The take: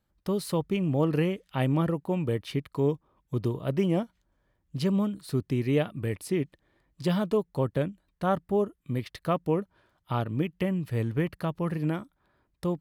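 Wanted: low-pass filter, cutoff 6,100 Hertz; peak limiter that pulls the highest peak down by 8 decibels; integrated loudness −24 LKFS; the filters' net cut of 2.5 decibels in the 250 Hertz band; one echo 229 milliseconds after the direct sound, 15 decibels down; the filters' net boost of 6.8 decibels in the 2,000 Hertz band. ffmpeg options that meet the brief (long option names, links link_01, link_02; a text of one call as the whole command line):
ffmpeg -i in.wav -af "lowpass=6100,equalizer=frequency=250:width_type=o:gain=-4,equalizer=frequency=2000:width_type=o:gain=8.5,alimiter=limit=-20.5dB:level=0:latency=1,aecho=1:1:229:0.178,volume=8dB" out.wav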